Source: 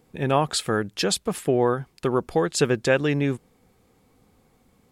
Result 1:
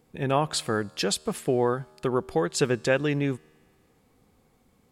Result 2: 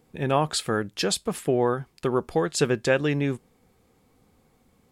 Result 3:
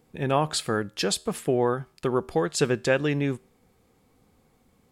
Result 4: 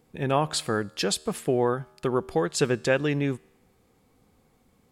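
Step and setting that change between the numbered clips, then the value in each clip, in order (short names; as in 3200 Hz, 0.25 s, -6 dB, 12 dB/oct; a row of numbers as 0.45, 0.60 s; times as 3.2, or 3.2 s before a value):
resonator, decay: 2.2, 0.17, 0.41, 1 s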